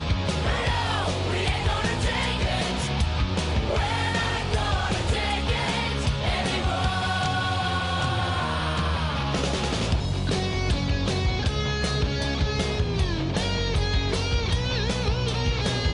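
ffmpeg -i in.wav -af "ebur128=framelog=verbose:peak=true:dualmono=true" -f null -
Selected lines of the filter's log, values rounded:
Integrated loudness:
  I:         -22.3 LUFS
  Threshold: -32.3 LUFS
Loudness range:
  LRA:         0.6 LU
  Threshold: -42.3 LUFS
  LRA low:   -22.6 LUFS
  LRA high:  -22.0 LUFS
True peak:
  Peak:      -12.2 dBFS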